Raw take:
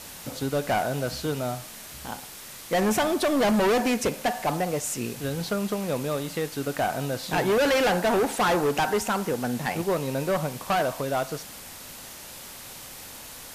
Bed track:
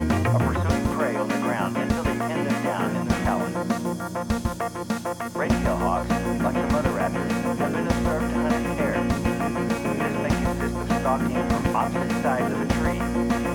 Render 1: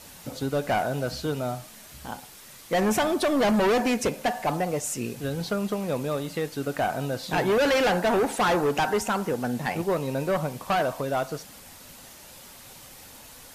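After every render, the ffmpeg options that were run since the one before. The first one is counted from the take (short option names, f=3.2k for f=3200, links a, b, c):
-af "afftdn=nr=6:nf=-42"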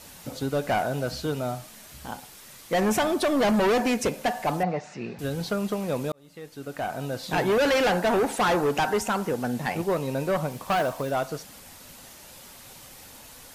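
-filter_complex "[0:a]asettb=1/sr,asplit=3[a][b][c];[a]atrim=end=4.634[d];[b]atrim=start=4.63:end=5.19,asetpts=PTS-STARTPTS,afade=t=in:d=0.004:c=qsin,afade=t=out:st=0.556:d=0.004:c=qsin,highpass=160,equalizer=f=180:t=q:w=4:g=8,equalizer=f=260:t=q:w=4:g=-8,equalizer=f=480:t=q:w=4:g=-4,equalizer=f=770:t=q:w=4:g=7,equalizer=f=1.8k:t=q:w=4:g=4,equalizer=f=3.2k:t=q:w=4:g=-9,lowpass=f=4.1k:w=0.5412,lowpass=f=4.1k:w=1.3066[e];[c]atrim=start=5.186[f];[d][e]acrossfade=d=0.004:c1=hsin:c2=qsin[g];[g][f]acrossfade=d=0.004:c1=qsin:c2=hsin,asettb=1/sr,asplit=3[h][i][j];[h]atrim=end=10.514[k];[i]atrim=start=10.51:end=11.11,asetpts=PTS-STARTPTS,afade=t=in:d=0.004:c=qsin,afade=t=out:st=0.596:d=0.004:c=qsin,acrusher=bits=6:mode=log:mix=0:aa=0.000001[l];[j]atrim=start=11.106[m];[k][l]acrossfade=d=0.004:c1=hsin:c2=qsin[n];[n][m]acrossfade=d=0.004:c1=qsin:c2=hsin,asplit=2[o][p];[o]atrim=end=6.12,asetpts=PTS-STARTPTS,afade=t=out:st=6.116:d=0.004:c=hsin[q];[p]atrim=start=6.12,asetpts=PTS-STARTPTS,afade=t=in:d=1.22[r];[q][r]concat=n=2:v=0:a=1"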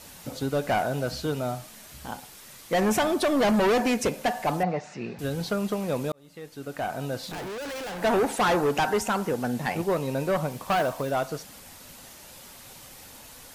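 -filter_complex "[0:a]asettb=1/sr,asplit=3[a][b][c];[a]atrim=end=7.264[d];[b]atrim=start=7.26:end=8.02,asetpts=PTS-STARTPTS,afade=t=in:d=0.004:c=qsin,afade=t=out:st=0.756:d=0.004:c=qsin,volume=34dB,asoftclip=hard,volume=-34dB[e];[c]atrim=start=8.016[f];[d][e]acrossfade=d=0.004:c1=hsin:c2=qsin[g];[g][f]acrossfade=d=0.004:c1=qsin:c2=hsin"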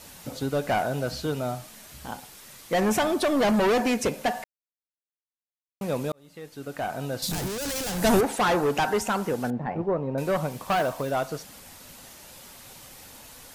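-filter_complex "[0:a]asettb=1/sr,asplit=3[a][b][c];[a]atrim=end=7.224[d];[b]atrim=start=7.22:end=8.21,asetpts=PTS-STARTPTS,afade=t=in:d=0.004:c=qsin,afade=t=out:st=0.986:d=0.004:c=qsin,bass=f=250:g=12,treble=f=4k:g=14[e];[c]atrim=start=8.206[f];[d][e]acrossfade=d=0.004:c1=hsin:c2=qsin[g];[g][f]acrossfade=d=0.004:c1=qsin:c2=hsin,asettb=1/sr,asplit=3[h][i][j];[h]atrim=end=9.504[k];[i]atrim=start=9.5:end=10.18,asetpts=PTS-STARTPTS,afade=t=in:d=0.004:c=qsin,afade=t=out:st=0.676:d=0.004:c=qsin,lowpass=1.1k[l];[j]atrim=start=10.176[m];[k][l]acrossfade=d=0.004:c1=hsin:c2=qsin[n];[n][m]acrossfade=d=0.004:c1=qsin:c2=hsin,asplit=3[o][p][q];[o]atrim=end=4.44,asetpts=PTS-STARTPTS,afade=t=out:st=4.436:d=0.004:c=hsin[r];[p]atrim=start=4.44:end=5.81,asetpts=PTS-STARTPTS,volume=0[s];[q]atrim=start=5.81,asetpts=PTS-STARTPTS,afade=t=in:d=0.004:c=hsin[t];[r][s][t]concat=n=3:v=0:a=1"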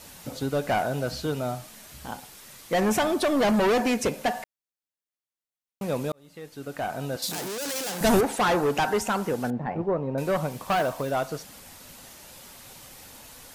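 -filter_complex "[0:a]asettb=1/sr,asplit=3[a][b][c];[a]atrim=end=7.164[d];[b]atrim=start=7.16:end=8.01,asetpts=PTS-STARTPTS,afade=t=in:d=0.004:c=qsin,afade=t=out:st=0.846:d=0.004:c=qsin,highpass=270[e];[c]atrim=start=8.006[f];[d][e]acrossfade=d=0.004:c1=hsin:c2=qsin[g];[g][f]acrossfade=d=0.004:c1=qsin:c2=hsin"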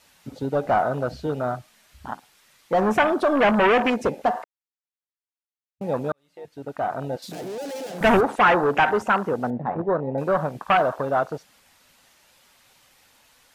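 -af "afwtdn=0.0316,equalizer=f=2.1k:w=0.34:g=9.5"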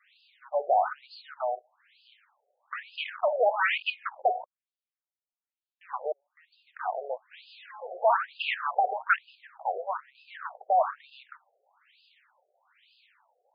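-filter_complex "[0:a]acrossover=split=650[a][b];[a]aeval=exprs='max(val(0),0)':c=same[c];[c][b]amix=inputs=2:normalize=0,afftfilt=real='re*between(b*sr/1024,540*pow(3600/540,0.5+0.5*sin(2*PI*1.1*pts/sr))/1.41,540*pow(3600/540,0.5+0.5*sin(2*PI*1.1*pts/sr))*1.41)':imag='im*between(b*sr/1024,540*pow(3600/540,0.5+0.5*sin(2*PI*1.1*pts/sr))/1.41,540*pow(3600/540,0.5+0.5*sin(2*PI*1.1*pts/sr))*1.41)':win_size=1024:overlap=0.75"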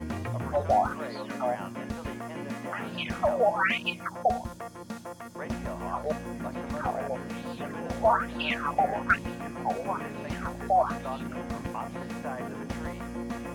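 -filter_complex "[1:a]volume=-12dB[a];[0:a][a]amix=inputs=2:normalize=0"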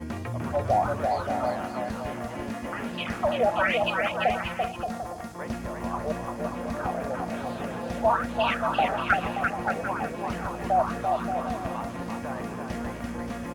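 -af "aecho=1:1:340|578|744.6|861.2|942.9:0.631|0.398|0.251|0.158|0.1"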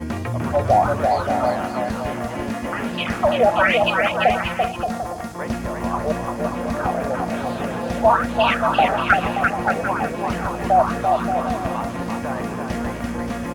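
-af "volume=7.5dB,alimiter=limit=-3dB:level=0:latency=1"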